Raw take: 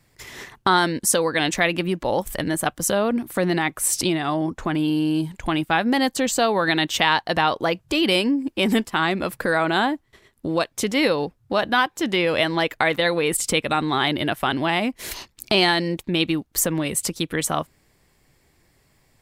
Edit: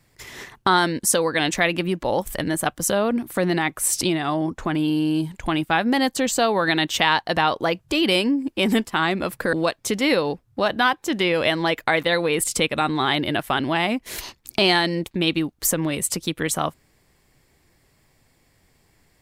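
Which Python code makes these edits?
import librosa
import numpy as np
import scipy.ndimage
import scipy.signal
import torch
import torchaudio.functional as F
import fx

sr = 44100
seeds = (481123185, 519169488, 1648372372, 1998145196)

y = fx.edit(x, sr, fx.cut(start_s=9.53, length_s=0.93), tone=tone)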